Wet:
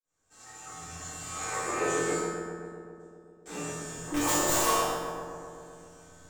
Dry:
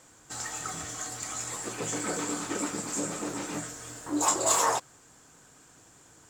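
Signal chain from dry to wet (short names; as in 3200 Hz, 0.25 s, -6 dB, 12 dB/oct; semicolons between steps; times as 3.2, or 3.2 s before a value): opening faded in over 1.47 s; 1.35–1.85 spectral gain 310–2700 Hz +8 dB; 2.16–3.46 gate -25 dBFS, range -44 dB; 3.97–4.44 low shelf 280 Hz +11 dB; wrapped overs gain 16 dB; resonator 85 Hz, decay 0.99 s, harmonics all, mix 90%; darkening echo 0.13 s, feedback 76%, low-pass 2200 Hz, level -4.5 dB; shoebox room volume 130 m³, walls mixed, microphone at 3.7 m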